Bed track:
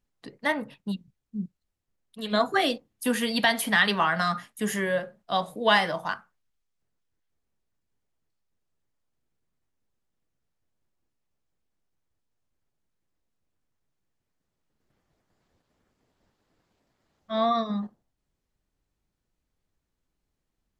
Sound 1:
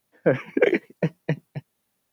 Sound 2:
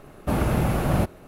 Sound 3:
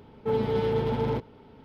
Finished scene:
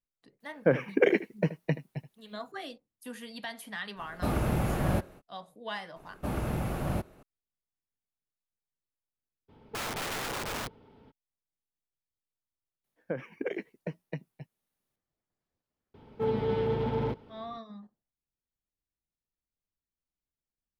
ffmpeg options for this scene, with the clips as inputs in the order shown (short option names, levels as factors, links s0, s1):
-filter_complex "[1:a]asplit=2[s0][s1];[2:a]asplit=2[s2][s3];[3:a]asplit=2[s4][s5];[0:a]volume=0.141[s6];[s0]aecho=1:1:78:0.168[s7];[s4]aeval=exprs='(mod(16.8*val(0)+1,2)-1)/16.8':c=same[s8];[s1]acompressor=threshold=0.0562:ratio=2:attack=52:release=223:knee=1:detection=peak[s9];[s5]acrossover=split=4100[s10][s11];[s11]acompressor=threshold=0.00112:ratio=4:attack=1:release=60[s12];[s10][s12]amix=inputs=2:normalize=0[s13];[s7]atrim=end=2.12,asetpts=PTS-STARTPTS,volume=0.631,afade=t=in:d=0.004:c=hsin,afade=t=out:st=2.116:d=0.004:c=hsin,adelay=400[s14];[s2]atrim=end=1.27,asetpts=PTS-STARTPTS,volume=0.501,afade=t=in:d=0.05,afade=t=out:st=1.22:d=0.05,adelay=3950[s15];[s3]atrim=end=1.27,asetpts=PTS-STARTPTS,volume=0.335,afade=t=in:d=0.004:c=hsin,afade=t=out:st=1.266:d=0.004:c=hsin,adelay=5960[s16];[s8]atrim=end=1.64,asetpts=PTS-STARTPTS,volume=0.501,afade=t=in:d=0.02,afade=t=out:st=1.62:d=0.02,adelay=9480[s17];[s9]atrim=end=2.12,asetpts=PTS-STARTPTS,volume=0.251,afade=t=in:d=0.004:c=hsin,afade=t=out:st=2.116:d=0.004:c=hsin,adelay=566244S[s18];[s13]atrim=end=1.64,asetpts=PTS-STARTPTS,volume=0.708,afade=t=in:d=0.004:c=hsin,afade=t=out:st=1.636:d=0.004:c=hsin,adelay=15940[s19];[s6][s14][s15][s16][s17][s18][s19]amix=inputs=7:normalize=0"